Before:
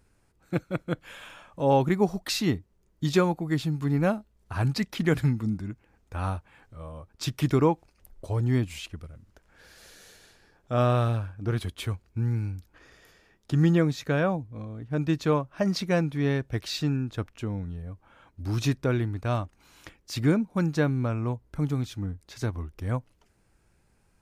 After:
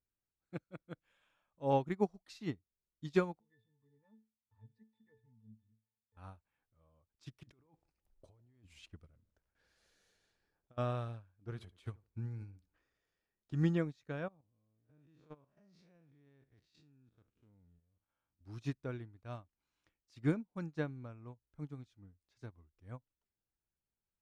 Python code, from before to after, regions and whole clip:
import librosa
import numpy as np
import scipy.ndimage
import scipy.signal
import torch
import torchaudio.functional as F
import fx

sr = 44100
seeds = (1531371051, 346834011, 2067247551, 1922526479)

y = fx.chain(x, sr, fx.high_shelf(hz=2300.0, db=10.0),
    fx.octave_resonator(note='A', decay_s=0.27),
    fx.band_squash(depth_pct=40), at=(3.4, 6.17))
y = fx.chain(y, sr, fx.gate_hold(open_db=-49.0, close_db=-59.0, hold_ms=71.0, range_db=-21, attack_ms=1.4, release_ms=100.0),
    fx.over_compress(threshold_db=-35.0, ratio=-1.0),
    fx.echo_bbd(ms=153, stages=1024, feedback_pct=31, wet_db=-20.5), at=(7.43, 10.78))
y = fx.chain(y, sr, fx.echo_tape(ms=73, feedback_pct=28, wet_db=-12.5, lp_hz=1100.0, drive_db=21.0, wow_cents=37),
    fx.transient(attack_db=4, sustain_db=8), at=(11.49, 13.53))
y = fx.chain(y, sr, fx.spec_blur(span_ms=120.0),
    fx.level_steps(step_db=12), at=(14.28, 18.41))
y = scipy.signal.sosfilt(scipy.signal.bessel(2, 7900.0, 'lowpass', norm='mag', fs=sr, output='sos'), y)
y = fx.upward_expand(y, sr, threshold_db=-33.0, expansion=2.5)
y = y * 10.0 ** (-6.5 / 20.0)